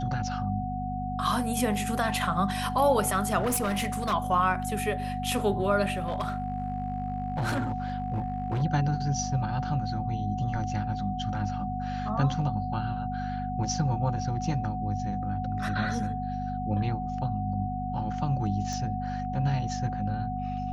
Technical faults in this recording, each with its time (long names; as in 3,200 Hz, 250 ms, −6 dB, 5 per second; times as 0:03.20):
mains hum 50 Hz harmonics 5 −34 dBFS
whistle 740 Hz −33 dBFS
0:03.39–0:04.14: clipping −23.5 dBFS
0:05.98–0:08.63: clipping −24.5 dBFS
0:18.73: click −23 dBFS